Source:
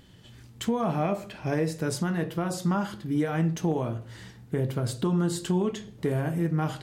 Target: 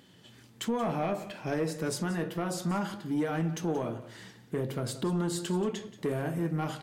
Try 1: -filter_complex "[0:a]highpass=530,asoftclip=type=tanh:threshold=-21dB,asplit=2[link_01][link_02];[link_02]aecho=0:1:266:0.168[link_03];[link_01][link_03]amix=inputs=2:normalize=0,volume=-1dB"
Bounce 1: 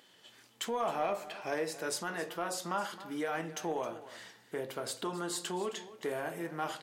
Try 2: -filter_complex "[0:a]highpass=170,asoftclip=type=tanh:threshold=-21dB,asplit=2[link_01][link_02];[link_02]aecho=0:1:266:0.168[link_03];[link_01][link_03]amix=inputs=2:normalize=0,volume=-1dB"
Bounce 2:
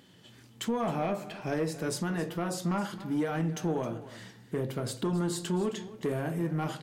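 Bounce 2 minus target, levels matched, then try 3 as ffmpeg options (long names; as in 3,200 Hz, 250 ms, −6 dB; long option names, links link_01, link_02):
echo 87 ms late
-filter_complex "[0:a]highpass=170,asoftclip=type=tanh:threshold=-21dB,asplit=2[link_01][link_02];[link_02]aecho=0:1:179:0.168[link_03];[link_01][link_03]amix=inputs=2:normalize=0,volume=-1dB"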